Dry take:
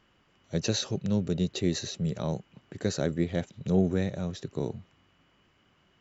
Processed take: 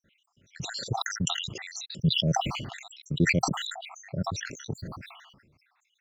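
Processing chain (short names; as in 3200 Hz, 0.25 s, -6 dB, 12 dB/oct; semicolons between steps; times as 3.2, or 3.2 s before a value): random spectral dropouts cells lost 77%; bell 130 Hz +8.5 dB 1.5 oct; sustainer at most 44 dB/s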